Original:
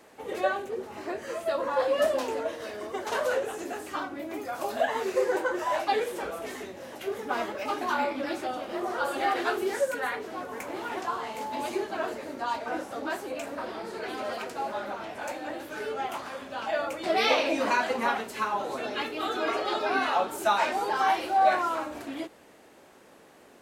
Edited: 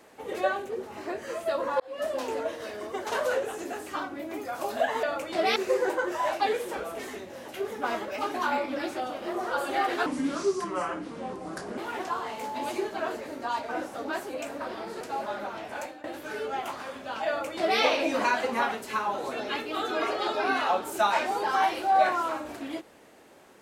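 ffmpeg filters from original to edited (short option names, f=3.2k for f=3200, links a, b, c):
-filter_complex "[0:a]asplit=8[a][b][c][d][e][f][g][h];[a]atrim=end=1.8,asetpts=PTS-STARTPTS,afade=t=out:st=1.796:d=0.004:c=hsin[i];[b]atrim=start=1.8:end=5.032,asetpts=PTS-STARTPTS,afade=t=in:d=0.53[j];[c]atrim=start=16.738:end=17.272[k];[d]atrim=start=5.028:end=9.534[l];[e]atrim=start=9.53:end=10.75,asetpts=PTS-STARTPTS,asetrate=31311,aresample=44100,atrim=end_sample=75777,asetpts=PTS-STARTPTS[m];[f]atrim=start=10.746:end=13.982[n];[g]atrim=start=14.468:end=15.5,asetpts=PTS-STARTPTS,afade=t=out:st=0.772:d=0.26:silence=0.125893[o];[h]atrim=start=15.5,asetpts=PTS-STARTPTS,afade=t=in:d=0.004:c=hsin:silence=0.125893[p];[i][j]concat=n=2:v=0:a=1[q];[q][k]acrossfade=d=0.004:c1=hsin:c2=hsin[r];[r][l]acrossfade=d=0.004:c1=hsin:c2=hsin[s];[s][m]acrossfade=d=0.004:c1=hsin:c2=hsin[t];[t][n]acrossfade=d=0.004:c1=hsin:c2=hsin[u];[o][p]concat=n=2:v=0:a=1[v];[u][v]acrossfade=d=0.004:c1=hsin:c2=hsin"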